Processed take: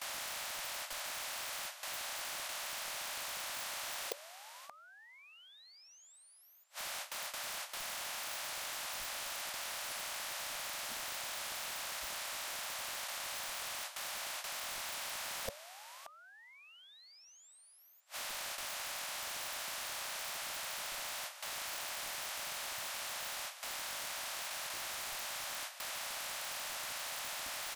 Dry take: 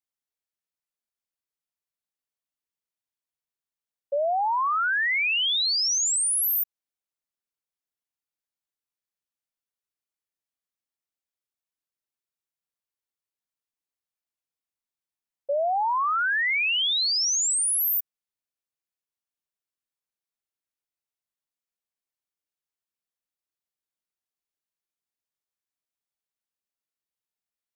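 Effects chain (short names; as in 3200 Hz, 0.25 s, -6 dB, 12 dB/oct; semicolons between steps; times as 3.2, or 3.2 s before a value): per-bin compression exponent 0.4; gate with hold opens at -30 dBFS; notch 410 Hz, Q 12; flipped gate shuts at -25 dBFS, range -41 dB; high shelf 9200 Hz -7 dB; on a send: echo 0.577 s -16.5 dB; on the sum: wrapped overs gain 33.5 dB; in parallel at +1 dB: negative-ratio compressor -47 dBFS, ratio -1; on the sum: spectral noise reduction 13 dB; gain +9 dB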